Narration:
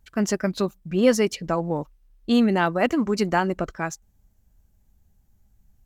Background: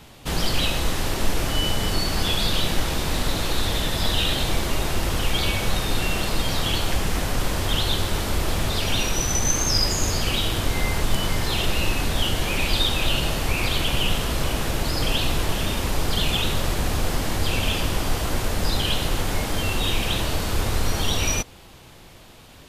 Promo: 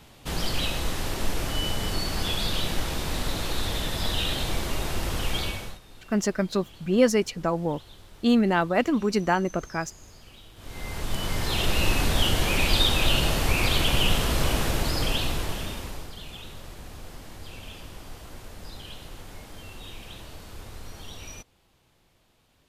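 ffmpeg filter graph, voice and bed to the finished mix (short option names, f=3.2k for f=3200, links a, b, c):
-filter_complex "[0:a]adelay=5950,volume=-1.5dB[a];[1:a]volume=21.5dB,afade=t=out:st=5.36:d=0.43:silence=0.0841395,afade=t=in:st=10.56:d=1.36:silence=0.0473151,afade=t=out:st=14.54:d=1.59:silence=0.11885[b];[a][b]amix=inputs=2:normalize=0"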